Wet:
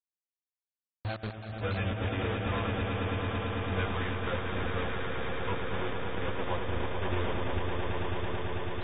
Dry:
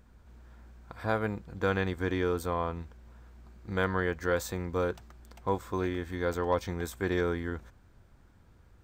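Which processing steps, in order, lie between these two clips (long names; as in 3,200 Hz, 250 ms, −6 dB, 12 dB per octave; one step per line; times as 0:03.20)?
spectral dynamics exaggerated over time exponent 3
high-pass filter 46 Hz 6 dB per octave
parametric band 2,500 Hz +11 dB 0.21 octaves
in parallel at +2 dB: downward compressor 12 to 1, threshold −42 dBFS, peak gain reduction 16.5 dB
on the sum: low shelf with overshoot 120 Hz +10 dB, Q 1.5
bit reduction 5 bits
echo that builds up and dies away 110 ms, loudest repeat 8, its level −7.5 dB
convolution reverb RT60 5.7 s, pre-delay 35 ms, DRR 13.5 dB
level −6.5 dB
AAC 16 kbit/s 32,000 Hz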